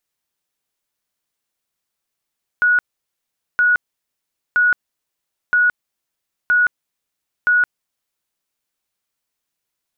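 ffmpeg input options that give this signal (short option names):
-f lavfi -i "aevalsrc='0.282*sin(2*PI*1460*mod(t,0.97))*lt(mod(t,0.97),246/1460)':d=5.82:s=44100"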